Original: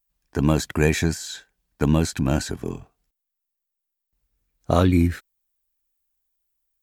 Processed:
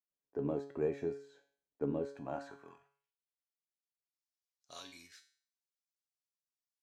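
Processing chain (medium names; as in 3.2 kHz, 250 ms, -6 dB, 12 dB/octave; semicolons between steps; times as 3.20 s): band-pass sweep 450 Hz -> 5.2 kHz, 1.99–3.50 s; feedback comb 140 Hz, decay 0.49 s, harmonics all, mix 80%; trim +2 dB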